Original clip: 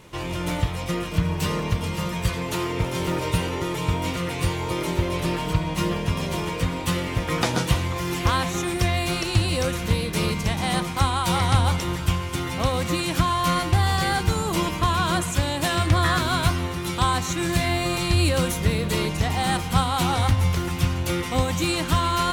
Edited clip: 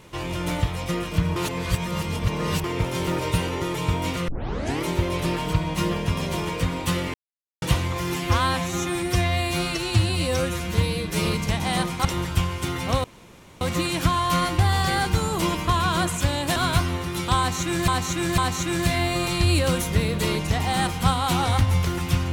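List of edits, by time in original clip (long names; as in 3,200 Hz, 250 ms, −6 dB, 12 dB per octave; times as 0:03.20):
0:01.36–0:02.64: reverse
0:04.28: tape start 0.56 s
0:07.14–0:07.62: silence
0:08.16–0:10.22: time-stretch 1.5×
0:11.02–0:11.76: remove
0:12.75: splice in room tone 0.57 s
0:15.70–0:16.26: remove
0:17.08–0:17.58: repeat, 3 plays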